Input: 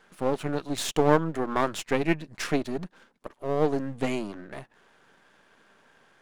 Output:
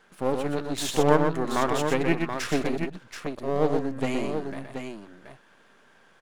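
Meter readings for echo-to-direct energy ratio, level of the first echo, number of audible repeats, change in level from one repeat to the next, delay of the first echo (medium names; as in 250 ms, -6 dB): -3.5 dB, -19.0 dB, 3, no regular repeats, 62 ms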